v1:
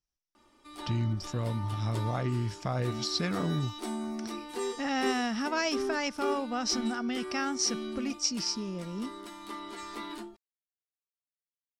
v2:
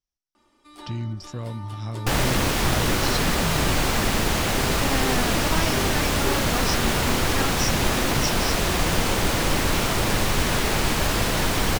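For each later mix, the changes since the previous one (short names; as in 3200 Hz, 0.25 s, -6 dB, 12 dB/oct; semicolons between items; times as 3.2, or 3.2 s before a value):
second sound: unmuted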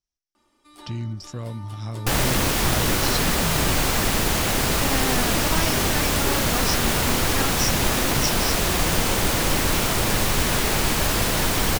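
first sound -3.0 dB; master: add high shelf 7600 Hz +7 dB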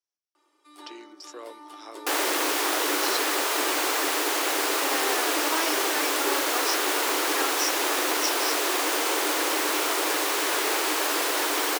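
master: add rippled Chebyshev high-pass 290 Hz, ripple 3 dB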